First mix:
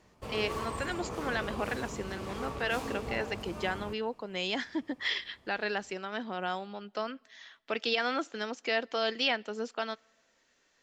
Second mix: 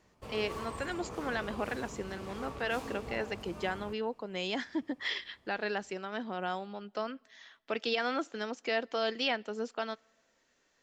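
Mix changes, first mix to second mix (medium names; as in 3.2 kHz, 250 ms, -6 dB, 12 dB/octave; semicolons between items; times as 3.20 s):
speech: add peaking EQ 3.4 kHz -3.5 dB 3 oct; background -4.5 dB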